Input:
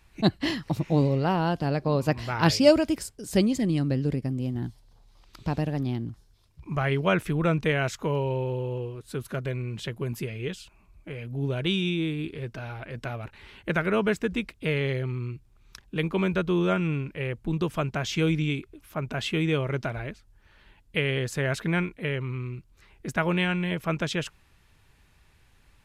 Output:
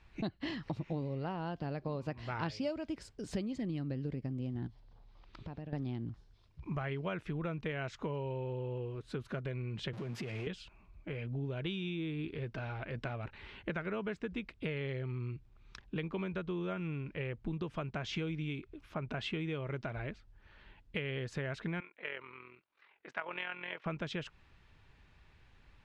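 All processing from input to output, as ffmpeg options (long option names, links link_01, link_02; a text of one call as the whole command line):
ffmpeg -i in.wav -filter_complex "[0:a]asettb=1/sr,asplit=3[link_01][link_02][link_03];[link_01]atrim=end=4.674[link_04];[link_02]atrim=start=4.67:end=5.73,asetpts=PTS-STARTPTS,afade=type=in:duration=0.004:curve=qsin,afade=type=out:start_time=1.056:duration=0.004:curve=qsin,lowpass=frequency=3500:poles=1,acompressor=threshold=-41dB:ratio=4:attack=3.2:release=140:knee=1:detection=peak[link_05];[link_03]atrim=start=5.726[link_06];[link_04][link_05]acrossfade=duration=0.004:curve1=hsin:curve2=qsin[link_07];[link_07][link_06]acrossfade=duration=0.004:curve1=qsin:curve2=hsin,asettb=1/sr,asplit=3[link_08][link_09][link_10];[link_08]atrim=end=9.934[link_11];[link_09]atrim=start=9.93:end=10.47,asetpts=PTS-STARTPTS,afade=type=in:duration=0.004:curve=qsin,afade=type=out:start_time=0.536:duration=0.004:curve=qsin,aeval=exprs='val(0)+0.5*0.0168*sgn(val(0))':channel_layout=same,highpass=frequency=110:width=0.5412,highpass=frequency=110:width=1.3066,acompressor=threshold=-33dB:ratio=6:attack=3.2:release=140:knee=1:detection=peak[link_12];[link_10]atrim=start=10.466[link_13];[link_11][link_12]acrossfade=duration=0.004:curve1=hsin:curve2=qsin[link_14];[link_14][link_13]acrossfade=duration=0.004:curve1=qsin:curve2=hsin,asettb=1/sr,asplit=3[link_15][link_16][link_17];[link_15]atrim=end=21.804[link_18];[link_16]atrim=start=21.8:end=23.86,asetpts=PTS-STARTPTS,afade=type=in:duration=0.004:curve=qsin,afade=type=out:start_time=2.056:duration=0.004:curve=qsin,highpass=700,lowpass=3200,tremolo=f=43:d=0.571[link_19];[link_17]atrim=start=23.856[link_20];[link_18][link_19]acrossfade=duration=0.004:curve1=hsin:curve2=qsin[link_21];[link_21][link_20]acrossfade=duration=0.004:curve1=qsin:curve2=hsin,lowpass=4000,acompressor=threshold=-33dB:ratio=6,volume=-2dB" out.wav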